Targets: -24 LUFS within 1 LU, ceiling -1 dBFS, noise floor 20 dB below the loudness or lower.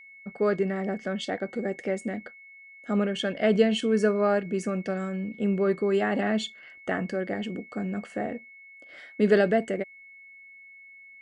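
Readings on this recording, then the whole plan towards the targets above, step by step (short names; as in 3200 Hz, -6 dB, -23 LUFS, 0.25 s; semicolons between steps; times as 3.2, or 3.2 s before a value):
steady tone 2200 Hz; tone level -47 dBFS; loudness -27.0 LUFS; peak -9.0 dBFS; loudness target -24.0 LUFS
-> notch 2200 Hz, Q 30; gain +3 dB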